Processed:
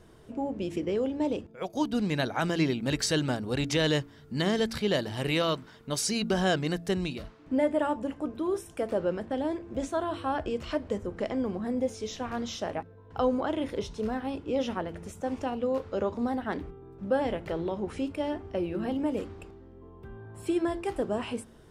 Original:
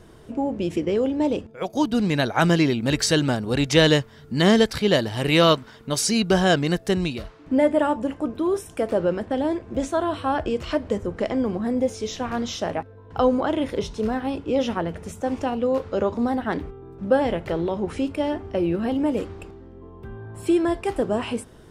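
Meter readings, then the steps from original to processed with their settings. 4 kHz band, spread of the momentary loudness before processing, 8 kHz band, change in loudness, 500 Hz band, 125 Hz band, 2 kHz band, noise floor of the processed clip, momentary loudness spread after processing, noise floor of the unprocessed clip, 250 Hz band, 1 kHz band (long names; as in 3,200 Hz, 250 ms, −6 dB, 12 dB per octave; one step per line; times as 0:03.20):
−8.0 dB, 11 LU, −6.5 dB, −7.5 dB, −7.5 dB, −8.0 dB, −8.0 dB, −53 dBFS, 9 LU, −47 dBFS, −7.5 dB, −7.0 dB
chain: brickwall limiter −10 dBFS, peak gain reduction 6 dB
hum removal 56.61 Hz, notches 6
level −6.5 dB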